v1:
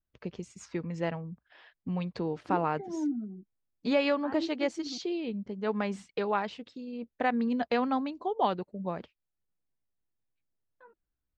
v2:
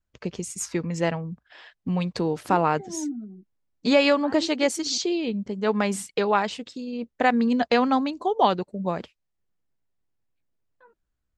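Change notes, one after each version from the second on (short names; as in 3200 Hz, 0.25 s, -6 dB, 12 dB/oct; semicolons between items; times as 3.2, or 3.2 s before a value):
first voice +7.0 dB; master: remove air absorption 150 m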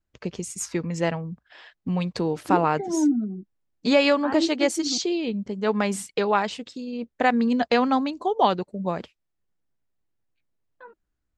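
second voice +10.0 dB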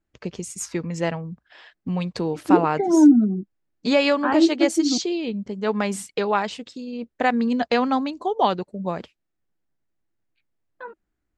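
second voice +8.5 dB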